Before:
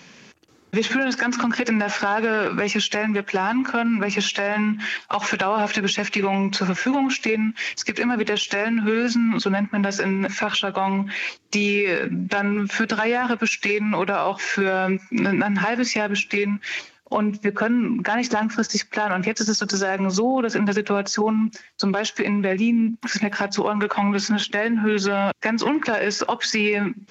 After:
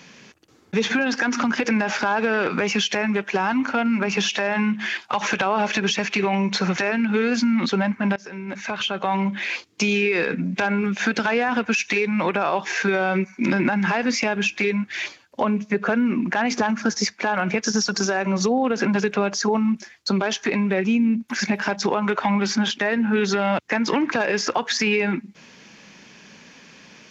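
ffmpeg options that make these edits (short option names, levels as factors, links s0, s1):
-filter_complex "[0:a]asplit=3[s0][s1][s2];[s0]atrim=end=6.782[s3];[s1]atrim=start=8.508:end=9.89,asetpts=PTS-STARTPTS,afade=t=out:st=1.378:d=0.004:c=hsin:silence=0.0707946[s4];[s2]atrim=start=9.89,asetpts=PTS-STARTPTS,afade=t=in:d=0.99:silence=0.0707946[s5];[s4][s5]concat=n=2:v=0:a=1[s6];[s3][s6]acrossfade=d=0.004:c1=hsin:c2=hsin"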